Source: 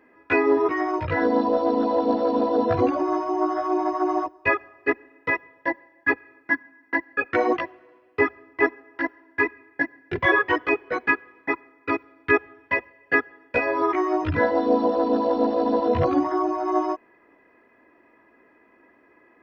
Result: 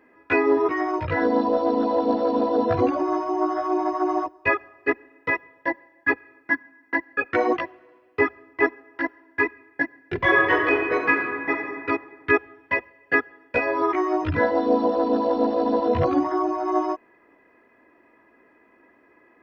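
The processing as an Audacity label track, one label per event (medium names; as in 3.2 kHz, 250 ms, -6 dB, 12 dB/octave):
10.160000	11.530000	reverb throw, RT60 1.9 s, DRR 1.5 dB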